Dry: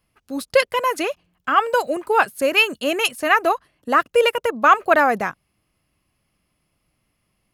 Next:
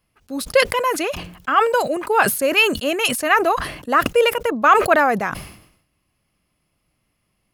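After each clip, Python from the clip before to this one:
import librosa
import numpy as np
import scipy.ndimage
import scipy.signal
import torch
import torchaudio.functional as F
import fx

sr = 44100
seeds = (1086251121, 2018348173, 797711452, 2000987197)

y = fx.sustainer(x, sr, db_per_s=79.0)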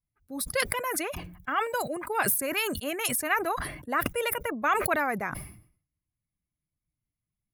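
y = fx.bin_expand(x, sr, power=1.5)
y = fx.band_shelf(y, sr, hz=4700.0, db=-13.0, octaves=1.7)
y = fx.spectral_comp(y, sr, ratio=2.0)
y = y * librosa.db_to_amplitude(-4.0)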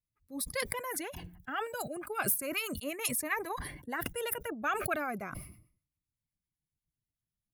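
y = fx.harmonic_tremolo(x, sr, hz=8.0, depth_pct=50, crossover_hz=800.0)
y = fx.notch_cascade(y, sr, direction='falling', hz=0.35)
y = y * librosa.db_to_amplitude(-2.5)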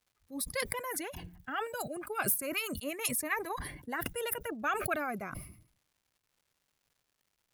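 y = fx.dmg_crackle(x, sr, seeds[0], per_s=310.0, level_db=-61.0)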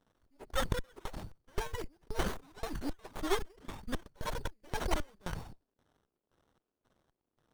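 y = fx.band_shuffle(x, sr, order='4321')
y = fx.filter_lfo_bandpass(y, sr, shape='square', hz=1.9, low_hz=320.0, high_hz=3500.0, q=1.4)
y = fx.running_max(y, sr, window=17)
y = y * librosa.db_to_amplitude(8.0)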